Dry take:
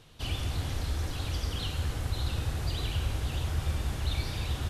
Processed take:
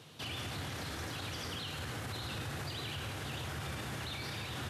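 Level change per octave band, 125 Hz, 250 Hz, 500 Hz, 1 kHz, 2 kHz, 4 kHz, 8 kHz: −10.5, −3.5, −3.0, −1.5, +0.5, −3.0, −3.0 decibels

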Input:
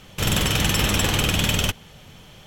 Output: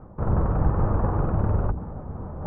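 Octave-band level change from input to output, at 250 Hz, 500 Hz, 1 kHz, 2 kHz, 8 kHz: −2.0 dB, −0.5 dB, −1.5 dB, −20.0 dB, below −40 dB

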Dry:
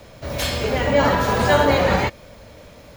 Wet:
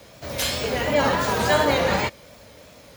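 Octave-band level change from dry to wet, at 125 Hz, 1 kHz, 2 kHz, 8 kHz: −6.0, −3.0, −2.0, +2.5 decibels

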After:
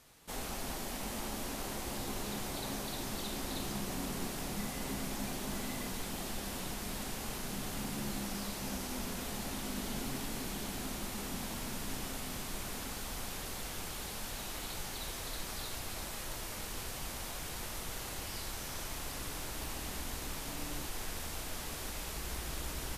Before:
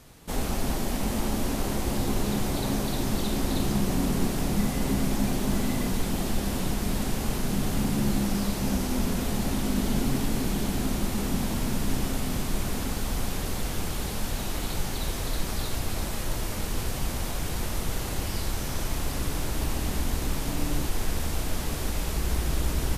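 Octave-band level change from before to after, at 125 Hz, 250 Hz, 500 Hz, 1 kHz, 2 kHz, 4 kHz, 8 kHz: −15.5, −14.0, −11.0, −8.0, −6.5, −6.0, −6.0 decibels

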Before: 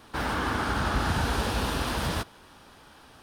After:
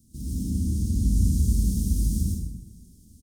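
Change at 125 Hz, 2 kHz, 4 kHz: +7.5 dB, below −40 dB, −13.0 dB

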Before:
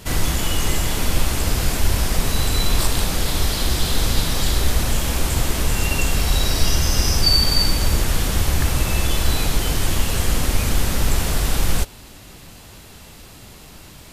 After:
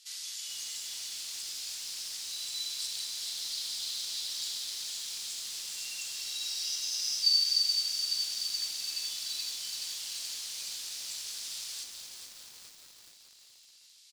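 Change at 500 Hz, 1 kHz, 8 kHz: below −35 dB, below −30 dB, −10.0 dB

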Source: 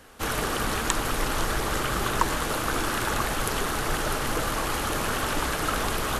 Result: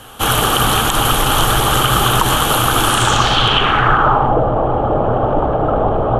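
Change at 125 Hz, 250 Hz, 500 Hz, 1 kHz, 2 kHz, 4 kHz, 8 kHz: +15.5, +11.0, +14.0, +14.5, +9.5, +15.5, +10.0 decibels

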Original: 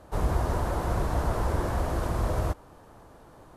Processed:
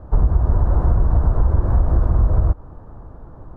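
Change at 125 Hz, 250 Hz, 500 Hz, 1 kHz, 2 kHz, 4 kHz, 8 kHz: +11.5 dB, +5.0 dB, +1.0 dB, −0.5 dB, −5.5 dB, below −15 dB, below −20 dB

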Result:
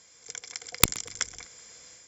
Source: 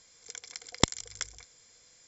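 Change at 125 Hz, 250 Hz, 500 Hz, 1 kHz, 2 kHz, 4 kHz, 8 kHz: +0.5 dB, −2.0 dB, −2.0 dB, +2.5 dB, +6.0 dB, +2.5 dB, can't be measured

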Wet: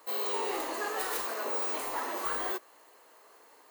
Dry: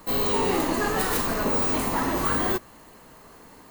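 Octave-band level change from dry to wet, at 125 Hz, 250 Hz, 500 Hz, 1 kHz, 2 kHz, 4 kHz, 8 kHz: below −35 dB, −17.5 dB, −9.0 dB, −7.5 dB, −7.5 dB, −7.5 dB, −7.5 dB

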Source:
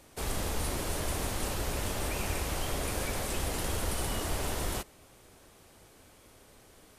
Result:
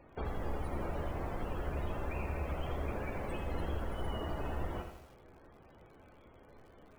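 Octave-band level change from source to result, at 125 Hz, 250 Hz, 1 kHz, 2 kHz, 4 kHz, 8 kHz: −3.0, −3.5, −4.0, −8.0, −15.0, −28.0 decibels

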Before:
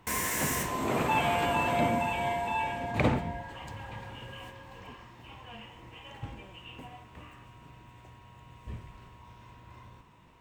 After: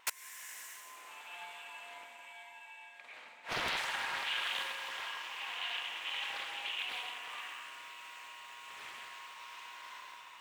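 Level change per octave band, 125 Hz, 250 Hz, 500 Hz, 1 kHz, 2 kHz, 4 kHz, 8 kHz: −27.5, −25.5, −18.0, −11.5, −2.5, +4.0, −8.5 decibels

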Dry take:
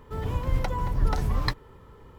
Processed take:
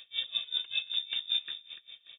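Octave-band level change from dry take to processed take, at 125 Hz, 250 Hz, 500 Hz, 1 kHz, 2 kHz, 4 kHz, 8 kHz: below −40 dB, below −35 dB, below −25 dB, below −25 dB, −3.0 dB, +12.5 dB, can't be measured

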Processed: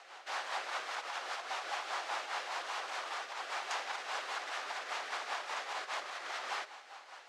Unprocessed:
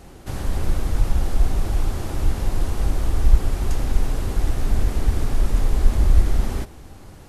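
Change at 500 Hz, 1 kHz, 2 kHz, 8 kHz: −12.0, −1.0, +1.5, −9.5 decibels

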